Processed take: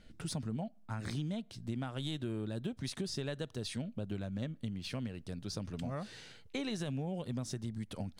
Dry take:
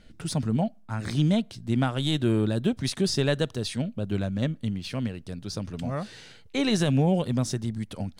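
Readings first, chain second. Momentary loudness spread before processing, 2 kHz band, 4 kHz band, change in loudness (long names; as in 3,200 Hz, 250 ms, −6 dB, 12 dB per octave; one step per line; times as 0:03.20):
10 LU, −12.0 dB, −11.5 dB, −12.5 dB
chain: downward compressor, threshold −30 dBFS, peak gain reduction 11.5 dB
level −5 dB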